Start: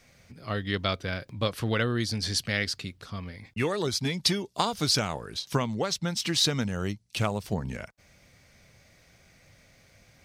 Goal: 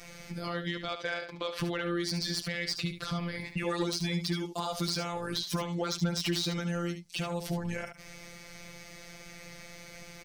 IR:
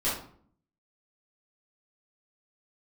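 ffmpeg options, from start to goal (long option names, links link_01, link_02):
-filter_complex "[0:a]asettb=1/sr,asplit=3[link_01][link_02][link_03];[link_01]atrim=end=0.884[link_04];[link_02]atrim=start=0.88:end=1.59,asetpts=PTS-STARTPTS,afade=type=in:duration=0.004:curve=qsin,afade=type=out:start_time=0.706:duration=0.004:curve=qsin,acrossover=split=380 6000:gain=0.126 1 0.141[link_05][link_06][link_07];[link_05][link_06][link_07]amix=inputs=3:normalize=0[link_08];[link_03]atrim=start=1.586[link_09];[link_04][link_08]acrossfade=duration=0.004:curve1=hsin:curve2=qsin[link_10];[link_10][link_09]acrossfade=duration=0.004:curve1=qsin:curve2=hsin,acompressor=threshold=-37dB:ratio=6,alimiter=level_in=7dB:limit=-24dB:level=0:latency=1:release=64,volume=-7dB,afftfilt=real='hypot(re,im)*cos(PI*b)':imag='0':win_size=1024:overlap=0.75,aeval=exprs='0.0596*sin(PI/2*1.78*val(0)/0.0596)':channel_layout=same,aecho=1:1:72:0.355,volume=5dB"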